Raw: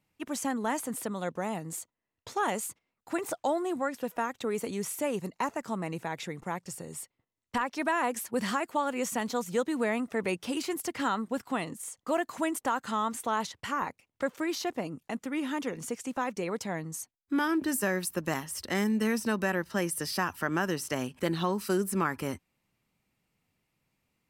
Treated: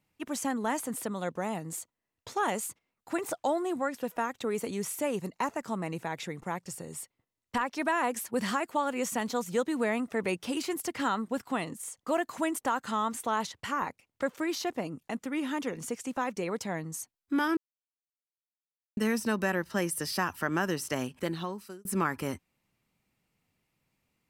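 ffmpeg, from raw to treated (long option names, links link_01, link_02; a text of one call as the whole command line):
ffmpeg -i in.wav -filter_complex "[0:a]asplit=4[link_01][link_02][link_03][link_04];[link_01]atrim=end=17.57,asetpts=PTS-STARTPTS,afade=type=out:start_time=17.566:duration=0.004:curve=hsin[link_05];[link_02]atrim=start=17.57:end=18.97,asetpts=PTS-STARTPTS,volume=0[link_06];[link_03]atrim=start=18.97:end=21.85,asetpts=PTS-STARTPTS,afade=type=in:duration=0.004:curve=hsin,afade=type=out:start_time=2.06:duration=0.82[link_07];[link_04]atrim=start=21.85,asetpts=PTS-STARTPTS,afade=type=in:duration=0.004:curve=hsin[link_08];[link_05][link_06][link_07][link_08]concat=n=4:v=0:a=1" out.wav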